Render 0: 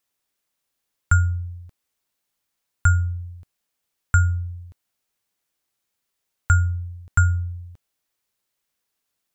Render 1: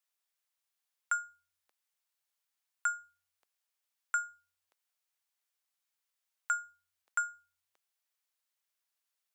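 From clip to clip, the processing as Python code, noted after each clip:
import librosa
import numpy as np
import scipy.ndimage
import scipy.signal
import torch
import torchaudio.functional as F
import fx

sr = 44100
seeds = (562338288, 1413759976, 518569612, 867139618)

y = scipy.signal.sosfilt(scipy.signal.bessel(4, 770.0, 'highpass', norm='mag', fs=sr, output='sos'), x)
y = F.gain(torch.from_numpy(y), -7.5).numpy()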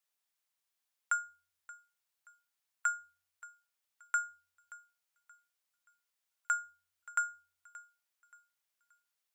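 y = fx.echo_thinned(x, sr, ms=577, feedback_pct=34, hz=420.0, wet_db=-19.0)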